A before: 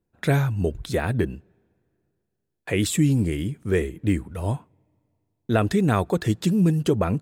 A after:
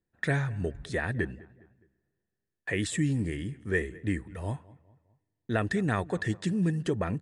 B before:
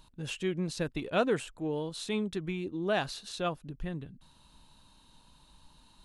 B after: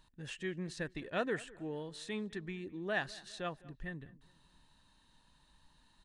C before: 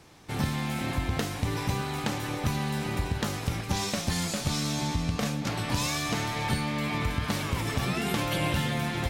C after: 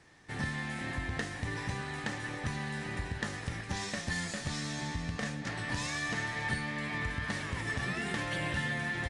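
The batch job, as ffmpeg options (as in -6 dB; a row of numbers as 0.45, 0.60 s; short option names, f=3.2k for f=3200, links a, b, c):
-filter_complex "[0:a]equalizer=f=1.8k:t=o:w=0.24:g=14.5,asplit=2[a][b];[b]adelay=206,lowpass=f=2.4k:p=1,volume=-21dB,asplit=2[c][d];[d]adelay=206,lowpass=f=2.4k:p=1,volume=0.45,asplit=2[e][f];[f]adelay=206,lowpass=f=2.4k:p=1,volume=0.45[g];[c][e][g]amix=inputs=3:normalize=0[h];[a][h]amix=inputs=2:normalize=0,aresample=22050,aresample=44100,volume=-8dB"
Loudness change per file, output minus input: -7.5, -7.0, -6.0 LU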